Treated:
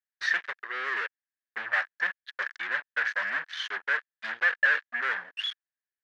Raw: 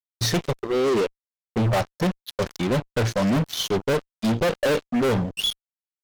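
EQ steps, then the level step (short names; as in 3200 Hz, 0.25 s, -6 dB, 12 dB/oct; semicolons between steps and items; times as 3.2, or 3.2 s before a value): resonant high-pass 1700 Hz, resonance Q 8.7; tape spacing loss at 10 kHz 31 dB; 0.0 dB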